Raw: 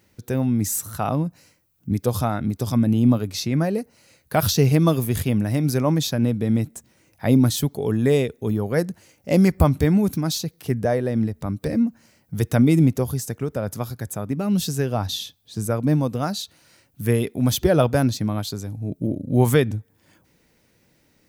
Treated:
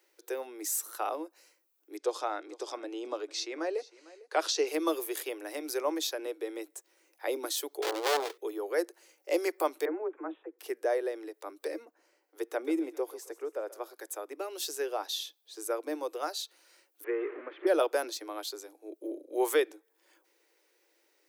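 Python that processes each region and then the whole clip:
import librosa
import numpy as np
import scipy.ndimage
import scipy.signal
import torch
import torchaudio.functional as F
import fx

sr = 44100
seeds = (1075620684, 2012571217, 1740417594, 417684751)

y = fx.chain(x, sr, fx.lowpass(hz=7600.0, slope=24),
    fx.echo_single(ms=452, db=-20.5), at=(1.97, 4.67))
y = fx.chain(y, sr, fx.halfwave_hold(),
    fx.peak_eq(hz=4100.0, db=6.0, octaves=1.2),
    fx.transformer_sat(knee_hz=1300.0), at=(7.82, 8.38))
y = fx.chain(y, sr, fx.cheby2_lowpass(hz=9000.0, order=4, stop_db=80),
    fx.resample_bad(factor=6, down='none', up='filtered'),
    fx.dispersion(late='lows', ms=56.0, hz=320.0), at=(9.85, 10.59))
y = fx.chain(y, sr, fx.high_shelf(hz=2100.0, db=-10.0),
    fx.echo_thinned(ms=132, feedback_pct=52, hz=540.0, wet_db=-15.5), at=(11.85, 13.94))
y = fx.chain(y, sr, fx.zero_step(step_db=-24.0),
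    fx.steep_lowpass(hz=2100.0, slope=36),
    fx.peak_eq(hz=820.0, db=-12.0, octaves=1.1), at=(17.04, 17.67))
y = scipy.signal.sosfilt(scipy.signal.butter(16, 320.0, 'highpass', fs=sr, output='sos'), y)
y = fx.notch(y, sr, hz=670.0, q=14.0)
y = F.gain(torch.from_numpy(y), -6.5).numpy()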